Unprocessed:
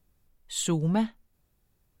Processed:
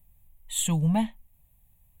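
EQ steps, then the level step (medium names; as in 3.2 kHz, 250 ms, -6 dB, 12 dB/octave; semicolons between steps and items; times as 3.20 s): bass shelf 140 Hz +8.5 dB; treble shelf 6.9 kHz +12 dB; static phaser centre 1.4 kHz, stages 6; +2.0 dB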